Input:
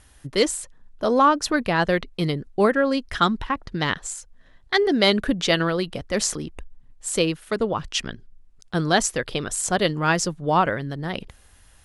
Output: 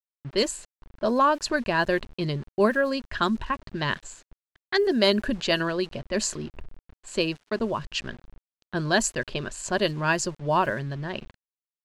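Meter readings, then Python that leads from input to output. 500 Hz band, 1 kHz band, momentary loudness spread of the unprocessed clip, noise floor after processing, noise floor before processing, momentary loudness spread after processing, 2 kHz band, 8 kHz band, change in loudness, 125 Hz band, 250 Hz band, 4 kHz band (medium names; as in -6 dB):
-3.0 dB, -4.0 dB, 12 LU, under -85 dBFS, -53 dBFS, 11 LU, -2.0 dB, -5.5 dB, -3.5 dB, -4.0 dB, -3.5 dB, -3.5 dB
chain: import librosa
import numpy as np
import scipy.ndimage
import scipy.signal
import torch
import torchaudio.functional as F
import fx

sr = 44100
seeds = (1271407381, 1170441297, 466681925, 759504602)

y = fx.ripple_eq(x, sr, per_octave=1.4, db=8)
y = np.where(np.abs(y) >= 10.0 ** (-38.5 / 20.0), y, 0.0)
y = fx.env_lowpass(y, sr, base_hz=2700.0, full_db=-14.0)
y = F.gain(torch.from_numpy(y), -4.0).numpy()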